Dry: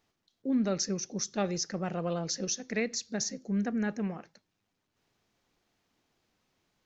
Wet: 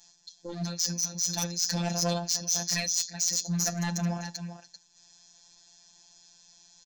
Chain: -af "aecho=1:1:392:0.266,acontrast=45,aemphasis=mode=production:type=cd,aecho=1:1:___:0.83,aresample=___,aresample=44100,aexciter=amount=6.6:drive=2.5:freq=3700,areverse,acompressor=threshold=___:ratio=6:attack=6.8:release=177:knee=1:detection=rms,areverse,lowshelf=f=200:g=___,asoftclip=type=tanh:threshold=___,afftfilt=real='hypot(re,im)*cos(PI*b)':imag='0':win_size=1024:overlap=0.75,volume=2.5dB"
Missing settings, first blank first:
1.2, 16000, -18dB, -4, -23dB